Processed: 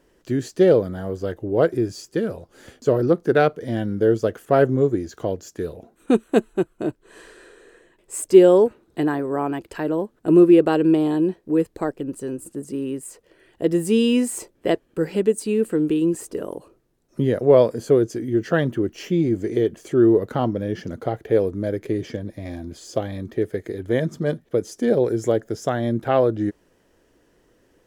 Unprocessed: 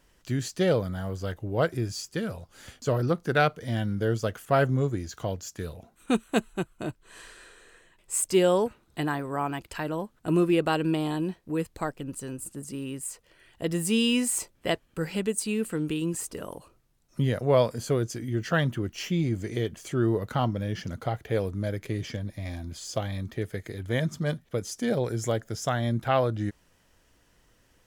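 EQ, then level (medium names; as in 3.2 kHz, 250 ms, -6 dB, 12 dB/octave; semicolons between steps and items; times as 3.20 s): peaking EQ 380 Hz +14.5 dB 1.7 oct; peaking EQ 1.7 kHz +3.5 dB 0.29 oct; -2.5 dB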